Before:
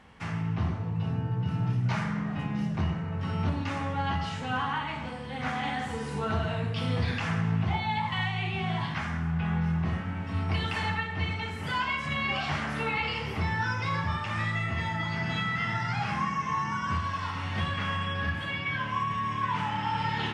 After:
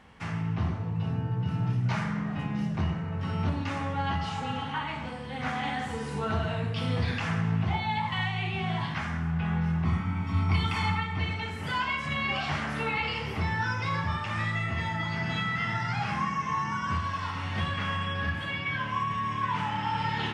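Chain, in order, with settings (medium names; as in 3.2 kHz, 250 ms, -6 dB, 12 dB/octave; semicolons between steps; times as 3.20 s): 4.30–4.72 s: spectral replace 730–2000 Hz before; 9.85–11.19 s: comb 0.9 ms, depth 64%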